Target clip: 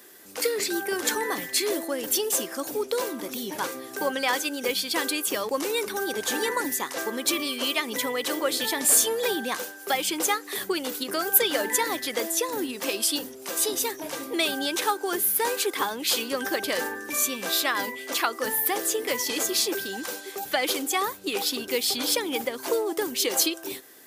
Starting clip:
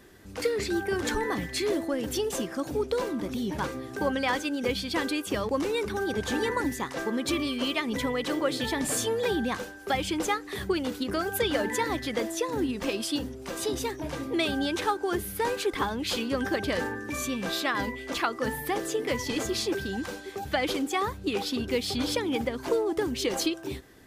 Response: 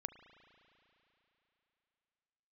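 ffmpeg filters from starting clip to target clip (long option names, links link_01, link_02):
-af "highpass=340,aemphasis=mode=production:type=50fm,volume=2dB"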